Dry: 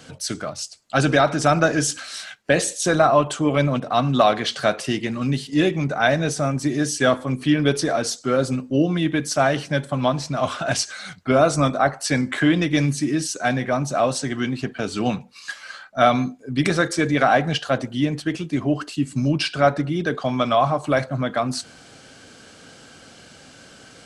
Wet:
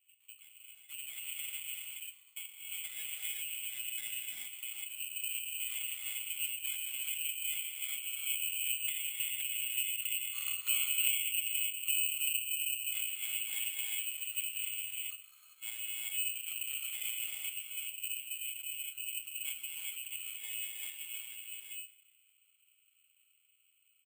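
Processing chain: median filter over 41 samples; Doppler pass-by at 10.77 s, 18 m/s, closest 1.3 m; low-pass that closes with the level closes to 410 Hz, closed at -45.5 dBFS; peaking EQ 210 Hz +8.5 dB 1.8 oct; compression 4:1, threshold -52 dBFS, peak gain reduction 30.5 dB; distance through air 270 m; frequency-shifting echo 198 ms, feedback 49%, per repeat +30 Hz, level -19.5 dB; gated-style reverb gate 420 ms rising, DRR -2 dB; frequency inversion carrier 2.8 kHz; careless resampling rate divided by 8×, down filtered, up zero stuff; trim +6.5 dB

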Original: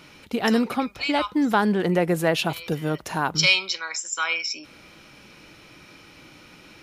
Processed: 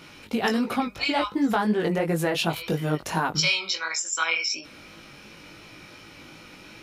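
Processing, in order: compression 5:1, threshold -22 dBFS, peak gain reduction 8 dB; chorus 2.8 Hz, delay 18 ms, depth 3 ms; trim +5 dB

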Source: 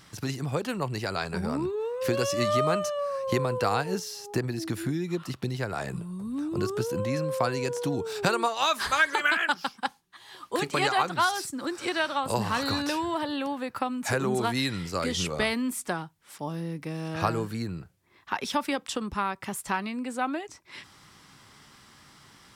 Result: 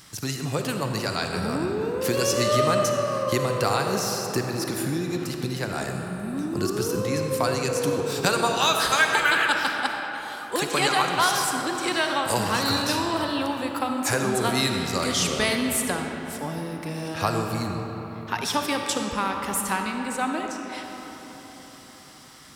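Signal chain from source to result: treble shelf 4.5 kHz +10 dB; on a send: reverberation RT60 4.4 s, pre-delay 15 ms, DRR 2.5 dB; on the sum: trim +1 dB

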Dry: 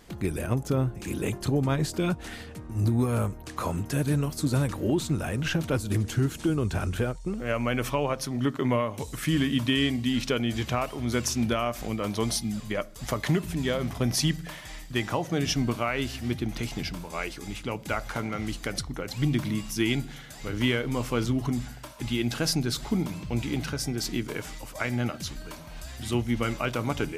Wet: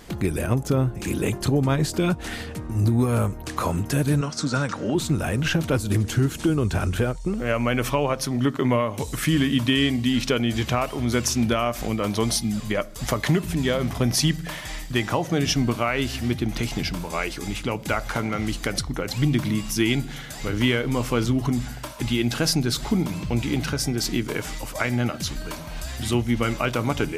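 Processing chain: in parallel at 0 dB: compression, threshold -33 dBFS, peak gain reduction 12.5 dB; 4.21–4.95 s: on the sum: cabinet simulation 170–7600 Hz, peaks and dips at 350 Hz -10 dB, 1.4 kHz +9 dB, 5.6 kHz +6 dB; trim +2 dB

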